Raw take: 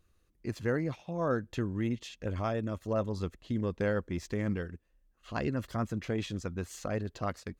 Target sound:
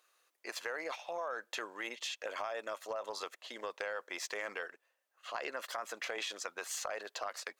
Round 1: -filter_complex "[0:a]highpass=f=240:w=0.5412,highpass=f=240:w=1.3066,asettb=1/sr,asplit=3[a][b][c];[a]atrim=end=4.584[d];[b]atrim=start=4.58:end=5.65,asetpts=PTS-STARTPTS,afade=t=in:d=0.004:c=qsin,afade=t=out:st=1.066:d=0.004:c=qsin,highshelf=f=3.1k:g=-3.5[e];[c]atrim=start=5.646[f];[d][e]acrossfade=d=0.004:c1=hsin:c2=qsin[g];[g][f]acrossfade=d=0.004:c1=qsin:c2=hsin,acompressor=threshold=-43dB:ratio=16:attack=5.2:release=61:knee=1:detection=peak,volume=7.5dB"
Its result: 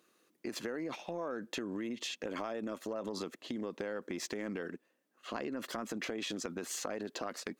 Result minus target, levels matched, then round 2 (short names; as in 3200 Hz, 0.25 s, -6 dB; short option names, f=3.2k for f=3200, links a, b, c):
250 Hz band +15.0 dB
-filter_complex "[0:a]highpass=f=610:w=0.5412,highpass=f=610:w=1.3066,asettb=1/sr,asplit=3[a][b][c];[a]atrim=end=4.584[d];[b]atrim=start=4.58:end=5.65,asetpts=PTS-STARTPTS,afade=t=in:d=0.004:c=qsin,afade=t=out:st=1.066:d=0.004:c=qsin,highshelf=f=3.1k:g=-3.5[e];[c]atrim=start=5.646[f];[d][e]acrossfade=d=0.004:c1=hsin:c2=qsin[g];[g][f]acrossfade=d=0.004:c1=qsin:c2=hsin,acompressor=threshold=-43dB:ratio=16:attack=5.2:release=61:knee=1:detection=peak,volume=7.5dB"